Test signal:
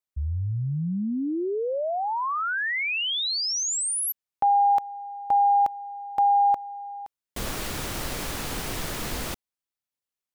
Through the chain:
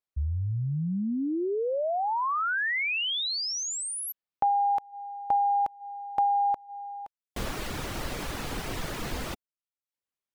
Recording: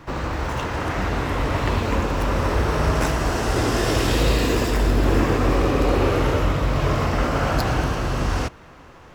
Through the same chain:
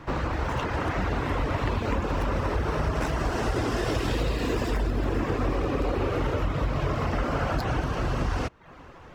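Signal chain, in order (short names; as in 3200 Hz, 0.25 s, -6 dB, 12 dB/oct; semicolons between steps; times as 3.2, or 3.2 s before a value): compressor, threshold -21 dBFS; reverb removal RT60 0.52 s; high shelf 5200 Hz -8.5 dB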